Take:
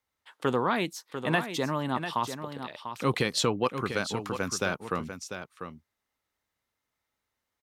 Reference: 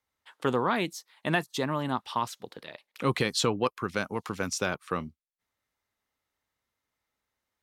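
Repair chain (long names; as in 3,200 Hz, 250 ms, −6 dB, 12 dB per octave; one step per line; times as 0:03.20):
echo removal 695 ms −9 dB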